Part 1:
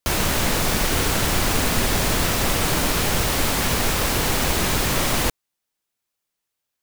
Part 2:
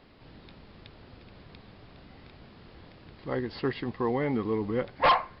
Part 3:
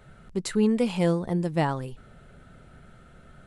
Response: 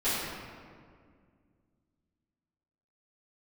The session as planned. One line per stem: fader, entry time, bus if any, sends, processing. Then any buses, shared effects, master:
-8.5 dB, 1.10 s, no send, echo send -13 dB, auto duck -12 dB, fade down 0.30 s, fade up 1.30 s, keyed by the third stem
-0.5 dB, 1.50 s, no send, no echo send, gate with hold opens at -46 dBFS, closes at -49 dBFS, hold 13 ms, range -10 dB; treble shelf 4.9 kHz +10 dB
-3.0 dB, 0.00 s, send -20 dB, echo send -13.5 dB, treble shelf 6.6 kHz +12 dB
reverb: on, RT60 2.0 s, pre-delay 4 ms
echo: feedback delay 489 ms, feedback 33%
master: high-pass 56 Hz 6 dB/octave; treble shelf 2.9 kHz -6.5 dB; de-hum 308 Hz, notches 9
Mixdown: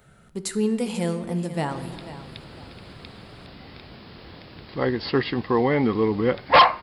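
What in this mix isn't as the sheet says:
stem 1: muted; stem 2 -0.5 dB -> +7.5 dB; master: missing treble shelf 2.9 kHz -6.5 dB

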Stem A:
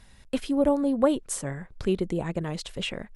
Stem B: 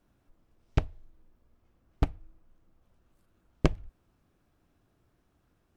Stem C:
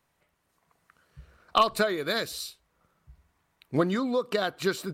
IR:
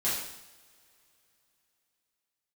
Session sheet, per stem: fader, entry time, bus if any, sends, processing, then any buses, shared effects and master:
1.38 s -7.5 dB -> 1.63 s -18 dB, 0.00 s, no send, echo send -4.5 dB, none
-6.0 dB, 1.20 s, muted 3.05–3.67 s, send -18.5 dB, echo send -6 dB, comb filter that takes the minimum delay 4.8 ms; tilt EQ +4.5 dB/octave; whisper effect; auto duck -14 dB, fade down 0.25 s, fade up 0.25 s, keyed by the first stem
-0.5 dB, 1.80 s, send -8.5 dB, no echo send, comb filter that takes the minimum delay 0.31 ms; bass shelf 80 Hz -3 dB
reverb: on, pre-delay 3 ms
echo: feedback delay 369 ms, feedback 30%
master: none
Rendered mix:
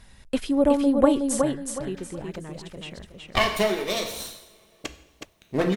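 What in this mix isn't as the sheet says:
stem A -7.5 dB -> +2.5 dB; stem B: missing comb filter that takes the minimum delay 4.8 ms

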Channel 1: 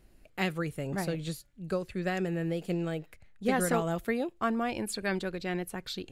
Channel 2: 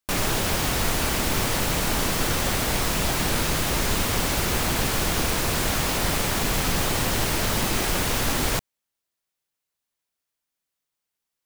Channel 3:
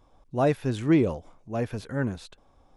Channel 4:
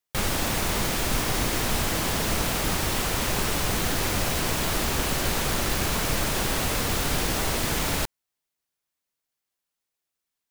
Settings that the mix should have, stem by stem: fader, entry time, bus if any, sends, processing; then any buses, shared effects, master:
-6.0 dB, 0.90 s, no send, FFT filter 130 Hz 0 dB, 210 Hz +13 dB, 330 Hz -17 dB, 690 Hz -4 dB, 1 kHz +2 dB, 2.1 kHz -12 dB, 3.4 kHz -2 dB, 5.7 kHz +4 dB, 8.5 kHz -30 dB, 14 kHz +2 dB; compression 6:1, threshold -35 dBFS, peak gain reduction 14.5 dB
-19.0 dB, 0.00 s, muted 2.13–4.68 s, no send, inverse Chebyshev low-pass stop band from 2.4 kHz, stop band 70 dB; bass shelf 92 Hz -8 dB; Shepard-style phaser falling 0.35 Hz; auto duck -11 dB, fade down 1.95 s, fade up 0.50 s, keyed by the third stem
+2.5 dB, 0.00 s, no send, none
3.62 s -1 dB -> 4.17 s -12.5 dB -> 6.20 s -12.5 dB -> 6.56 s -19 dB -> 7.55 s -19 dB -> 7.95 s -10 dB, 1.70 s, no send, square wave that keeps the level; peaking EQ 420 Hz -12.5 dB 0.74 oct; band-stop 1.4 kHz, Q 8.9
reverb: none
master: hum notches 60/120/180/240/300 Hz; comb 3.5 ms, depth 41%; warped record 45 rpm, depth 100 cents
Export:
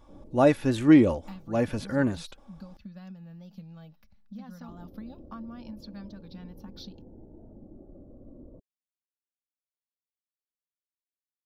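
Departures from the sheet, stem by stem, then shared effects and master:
stem 4: muted; master: missing hum notches 60/120/180/240/300 Hz

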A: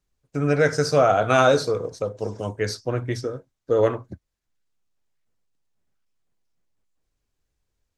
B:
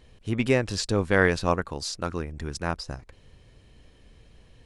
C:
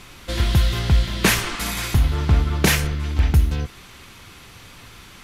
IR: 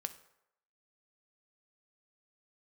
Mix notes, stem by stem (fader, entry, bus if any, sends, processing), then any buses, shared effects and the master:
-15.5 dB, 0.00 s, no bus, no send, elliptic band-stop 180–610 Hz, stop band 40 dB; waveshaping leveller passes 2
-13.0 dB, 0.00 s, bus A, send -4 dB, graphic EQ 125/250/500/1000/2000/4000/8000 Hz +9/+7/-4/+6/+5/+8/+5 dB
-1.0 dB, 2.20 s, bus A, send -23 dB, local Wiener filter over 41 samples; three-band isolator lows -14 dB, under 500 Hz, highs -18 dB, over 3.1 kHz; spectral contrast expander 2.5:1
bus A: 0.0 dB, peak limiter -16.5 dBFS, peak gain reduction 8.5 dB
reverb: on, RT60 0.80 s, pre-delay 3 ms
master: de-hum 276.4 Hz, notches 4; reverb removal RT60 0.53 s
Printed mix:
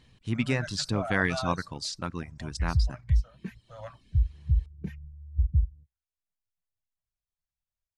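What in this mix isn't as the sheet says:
stem A: missing waveshaping leveller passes 2; stem C: missing three-band isolator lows -14 dB, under 500 Hz, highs -18 dB, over 3.1 kHz; master: missing de-hum 276.4 Hz, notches 4

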